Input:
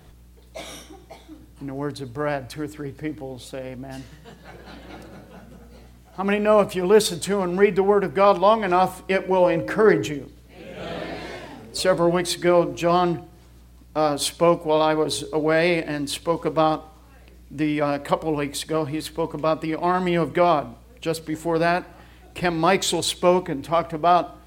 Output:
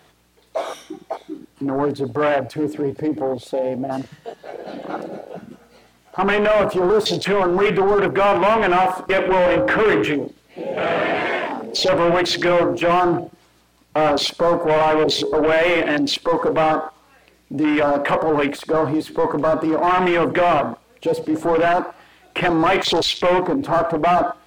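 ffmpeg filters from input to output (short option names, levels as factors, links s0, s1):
-filter_complex "[0:a]asplit=2[s0][s1];[s1]highpass=f=720:p=1,volume=39.8,asoftclip=type=tanh:threshold=0.631[s2];[s0][s2]amix=inputs=2:normalize=0,lowpass=f=5500:p=1,volume=0.501,afwtdn=0.158,volume=0.562"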